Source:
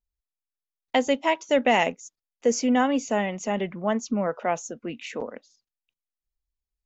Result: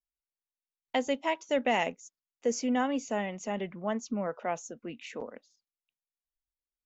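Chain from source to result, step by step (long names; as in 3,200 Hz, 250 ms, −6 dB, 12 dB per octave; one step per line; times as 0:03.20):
noise reduction from a noise print of the clip's start 9 dB
level −7 dB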